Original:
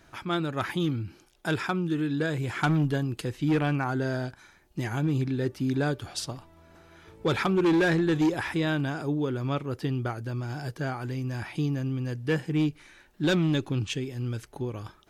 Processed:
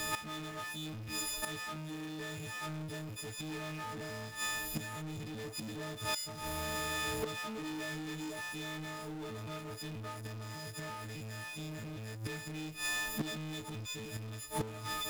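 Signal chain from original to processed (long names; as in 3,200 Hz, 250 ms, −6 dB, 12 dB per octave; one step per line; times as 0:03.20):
every partial snapped to a pitch grid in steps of 6 semitones
gate with flip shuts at −26 dBFS, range −38 dB
power curve on the samples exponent 0.35
level −2 dB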